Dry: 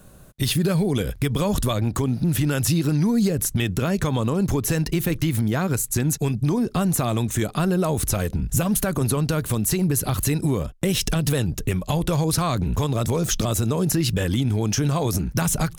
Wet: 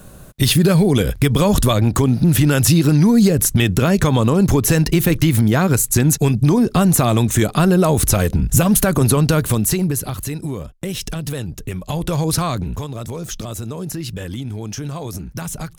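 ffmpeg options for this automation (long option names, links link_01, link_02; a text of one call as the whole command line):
ffmpeg -i in.wav -af "volume=14.5dB,afade=type=out:start_time=9.36:duration=0.81:silence=0.281838,afade=type=in:start_time=11.7:duration=0.65:silence=0.446684,afade=type=out:start_time=12.35:duration=0.52:silence=0.354813" out.wav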